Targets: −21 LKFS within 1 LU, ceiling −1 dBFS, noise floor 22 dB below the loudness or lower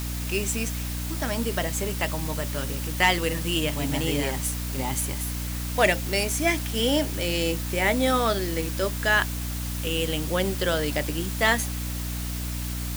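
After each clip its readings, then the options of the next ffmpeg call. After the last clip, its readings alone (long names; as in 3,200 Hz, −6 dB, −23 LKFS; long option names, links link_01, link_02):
mains hum 60 Hz; hum harmonics up to 300 Hz; level of the hum −29 dBFS; background noise floor −31 dBFS; target noise floor −48 dBFS; integrated loudness −25.5 LKFS; sample peak −7.0 dBFS; target loudness −21.0 LKFS
→ -af "bandreject=frequency=60:width_type=h:width=6,bandreject=frequency=120:width_type=h:width=6,bandreject=frequency=180:width_type=h:width=6,bandreject=frequency=240:width_type=h:width=6,bandreject=frequency=300:width_type=h:width=6"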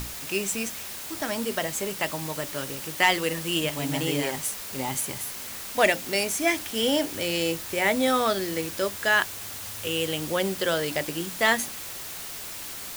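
mains hum none found; background noise floor −37 dBFS; target noise floor −49 dBFS
→ -af "afftdn=noise_reduction=12:noise_floor=-37"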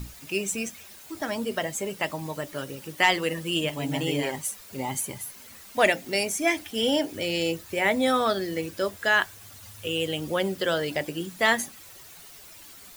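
background noise floor −47 dBFS; target noise floor −49 dBFS
→ -af "afftdn=noise_reduction=6:noise_floor=-47"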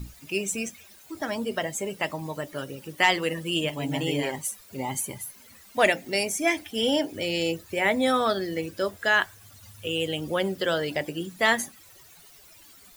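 background noise floor −52 dBFS; integrated loudness −27.0 LKFS; sample peak −7.5 dBFS; target loudness −21.0 LKFS
→ -af "volume=6dB"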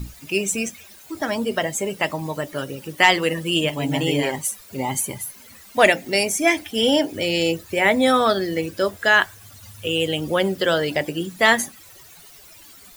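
integrated loudness −21.0 LKFS; sample peak −1.5 dBFS; background noise floor −46 dBFS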